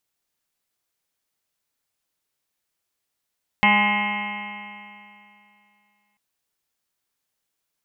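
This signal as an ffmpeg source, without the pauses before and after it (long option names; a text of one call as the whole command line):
ffmpeg -f lavfi -i "aevalsrc='0.0891*pow(10,-3*t/2.64)*sin(2*PI*205.09*t)+0.01*pow(10,-3*t/2.64)*sin(2*PI*410.75*t)+0.0211*pow(10,-3*t/2.64)*sin(2*PI*617.54*t)+0.119*pow(10,-3*t/2.64)*sin(2*PI*826.01*t)+0.0794*pow(10,-3*t/2.64)*sin(2*PI*1036.72*t)+0.02*pow(10,-3*t/2.64)*sin(2*PI*1250.2*t)+0.0112*pow(10,-3*t/2.64)*sin(2*PI*1466.99*t)+0.0133*pow(10,-3*t/2.64)*sin(2*PI*1687.59*t)+0.0596*pow(10,-3*t/2.64)*sin(2*PI*1912.51*t)+0.158*pow(10,-3*t/2.64)*sin(2*PI*2142.23*t)+0.0224*pow(10,-3*t/2.64)*sin(2*PI*2377.2*t)+0.0631*pow(10,-3*t/2.64)*sin(2*PI*2617.88*t)+0.0335*pow(10,-3*t/2.64)*sin(2*PI*2864.7*t)+0.0299*pow(10,-3*t/2.64)*sin(2*PI*3118.04*t)':duration=2.54:sample_rate=44100" out.wav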